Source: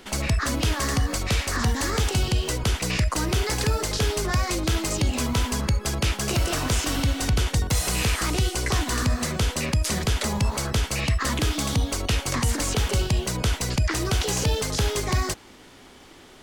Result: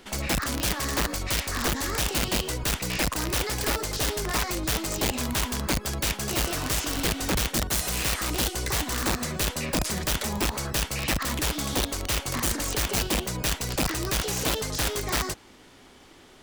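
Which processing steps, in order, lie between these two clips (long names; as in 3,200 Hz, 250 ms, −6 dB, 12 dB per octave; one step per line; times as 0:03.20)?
wrap-around overflow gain 17 dB
level −3.5 dB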